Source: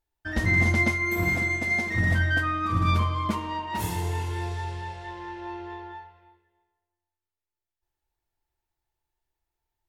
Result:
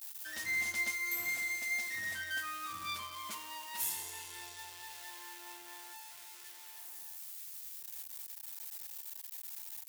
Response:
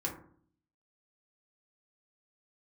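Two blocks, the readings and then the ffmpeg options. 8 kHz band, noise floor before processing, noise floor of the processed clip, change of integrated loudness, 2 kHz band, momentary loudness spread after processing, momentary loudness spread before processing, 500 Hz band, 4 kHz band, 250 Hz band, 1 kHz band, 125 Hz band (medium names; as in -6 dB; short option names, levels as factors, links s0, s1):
+3.0 dB, under -85 dBFS, -52 dBFS, -13.5 dB, -10.0 dB, 14 LU, 16 LU, -22.0 dB, -4.0 dB, -27.5 dB, -15.0 dB, -36.5 dB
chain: -af "aeval=exprs='val(0)+0.5*0.0141*sgn(val(0))':c=same,aderivative"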